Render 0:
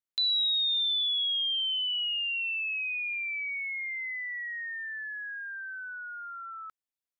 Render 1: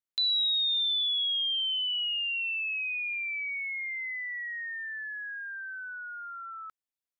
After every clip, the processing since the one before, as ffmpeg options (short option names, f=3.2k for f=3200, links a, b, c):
-af anull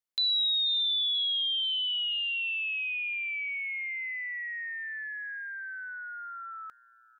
-af "aecho=1:1:485|970|1455|1940:0.0891|0.0437|0.0214|0.0105"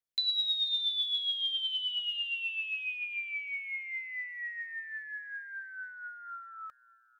-af "aphaser=in_gain=1:out_gain=1:delay=3.9:decay=0.43:speed=0.33:type=triangular,volume=-4.5dB"